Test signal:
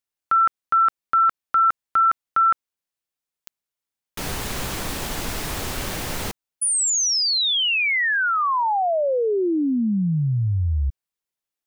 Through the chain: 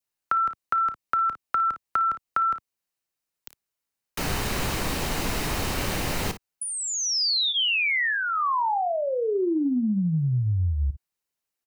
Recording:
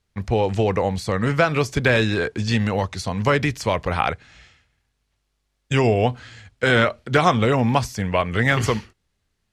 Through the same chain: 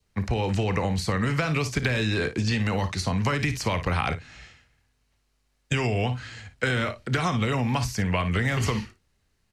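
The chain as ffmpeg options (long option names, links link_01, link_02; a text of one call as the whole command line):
ffmpeg -i in.wav -filter_complex "[0:a]acrossover=split=96|340|980|4400[link_01][link_02][link_03][link_04][link_05];[link_01]acompressor=threshold=-29dB:ratio=4[link_06];[link_02]acompressor=threshold=-26dB:ratio=4[link_07];[link_03]acompressor=threshold=-36dB:ratio=4[link_08];[link_04]acompressor=threshold=-24dB:ratio=4[link_09];[link_05]acompressor=threshold=-37dB:ratio=4[link_10];[link_06][link_07][link_08][link_09][link_10]amix=inputs=5:normalize=0,asplit=2[link_11][link_12];[link_12]aecho=0:1:32|56:0.141|0.224[link_13];[link_11][link_13]amix=inputs=2:normalize=0,adynamicequalizer=threshold=0.0112:dfrequency=1500:dqfactor=2.5:tfrequency=1500:tqfactor=2.5:attack=5:release=100:ratio=0.375:range=4:mode=cutabove:tftype=bell,bandreject=frequency=3400:width=14,acompressor=threshold=-23dB:ratio=6:attack=12:release=235:knee=1:detection=peak,volume=2dB" out.wav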